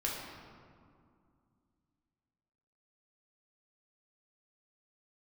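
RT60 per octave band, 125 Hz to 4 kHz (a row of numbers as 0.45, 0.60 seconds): 3.0, 3.2, 2.3, 2.3, 1.6, 1.1 seconds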